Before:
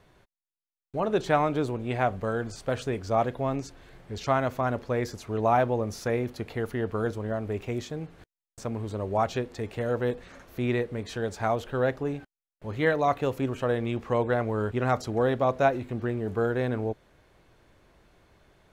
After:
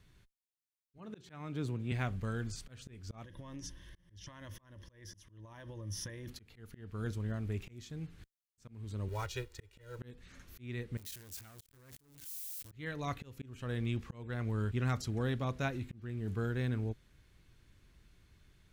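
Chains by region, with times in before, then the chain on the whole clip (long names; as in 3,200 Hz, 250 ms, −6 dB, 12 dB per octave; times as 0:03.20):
0:00.98–0:01.92: high-pass filter 89 Hz 24 dB per octave + high-shelf EQ 2,600 Hz −4.5 dB
0:03.24–0:06.28: EQ curve with evenly spaced ripples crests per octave 1.2, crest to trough 13 dB + downward compressor 5 to 1, threshold −34 dBFS
0:09.08–0:09.99: mu-law and A-law mismatch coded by A + parametric band 180 Hz −14.5 dB 0.81 octaves + comb filter 2.1 ms
0:10.97–0:12.72: spike at every zero crossing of −25 dBFS + output level in coarse steps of 21 dB + saturating transformer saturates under 1,800 Hz
whole clip: guitar amp tone stack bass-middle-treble 6-0-2; volume swells 371 ms; level +12.5 dB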